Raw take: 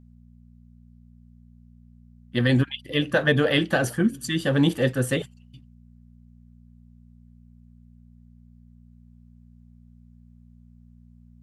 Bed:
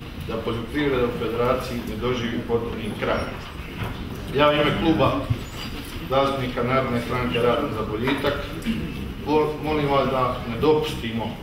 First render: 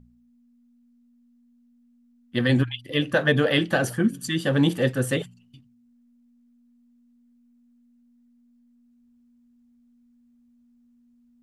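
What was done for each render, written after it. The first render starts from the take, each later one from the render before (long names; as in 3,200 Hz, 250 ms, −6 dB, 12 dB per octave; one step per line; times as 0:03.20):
hum removal 60 Hz, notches 3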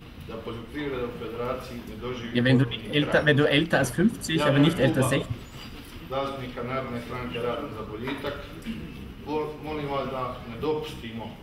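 mix in bed −9 dB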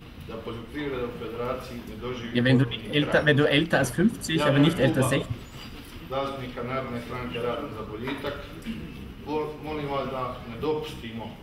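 no processing that can be heard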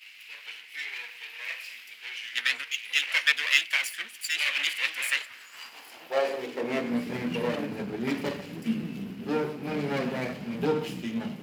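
lower of the sound and its delayed copy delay 0.41 ms
high-pass filter sweep 2,300 Hz → 190 Hz, 0:05.04–0:07.08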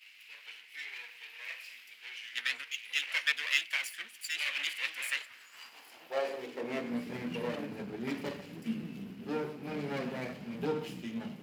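level −7 dB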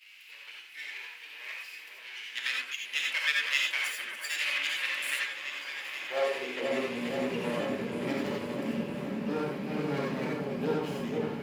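echo whose low-pass opens from repeat to repeat 482 ms, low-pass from 750 Hz, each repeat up 1 octave, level −3 dB
reverb whose tail is shaped and stops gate 110 ms rising, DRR −1 dB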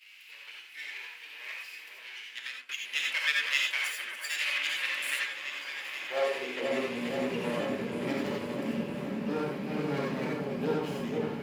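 0:02.07–0:02.69: fade out, to −17.5 dB
0:03.64–0:04.66: high-pass filter 320 Hz 6 dB per octave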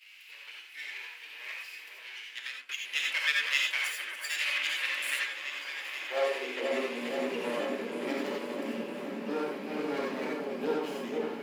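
high-pass filter 250 Hz 24 dB per octave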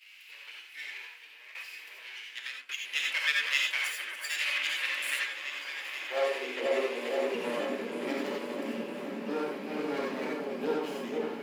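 0:00.85–0:01.55: fade out, to −11.5 dB
0:06.66–0:07.35: high-pass with resonance 410 Hz, resonance Q 1.5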